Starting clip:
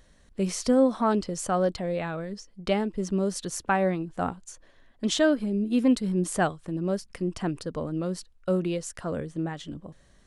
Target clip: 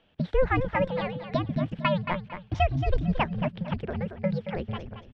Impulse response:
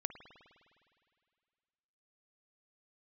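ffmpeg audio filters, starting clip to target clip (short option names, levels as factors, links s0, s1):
-filter_complex "[0:a]highpass=f=160:t=q:w=0.5412,highpass=f=160:t=q:w=1.307,lowpass=f=2100:t=q:w=0.5176,lowpass=f=2100:t=q:w=0.7071,lowpass=f=2100:t=q:w=1.932,afreqshift=-270,asplit=2[s0][s1];[s1]aecho=0:1:451|902|1353:0.355|0.0887|0.0222[s2];[s0][s2]amix=inputs=2:normalize=0,asetrate=88200,aresample=44100,bandreject=f=50:t=h:w=6,bandreject=f=100:t=h:w=6"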